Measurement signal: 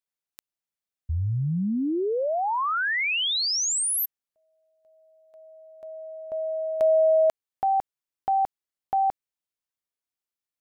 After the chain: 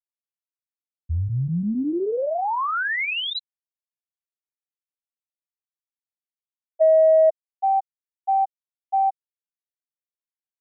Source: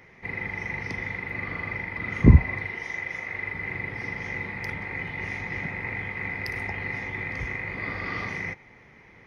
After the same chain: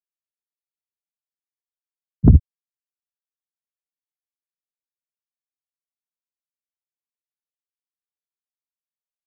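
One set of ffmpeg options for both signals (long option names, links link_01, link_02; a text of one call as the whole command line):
ffmpeg -i in.wav -af "afftfilt=real='re*gte(hypot(re,im),0.631)':imag='im*gte(hypot(re,im),0.631)':win_size=1024:overlap=0.75,acontrast=49,volume=-1dB" out.wav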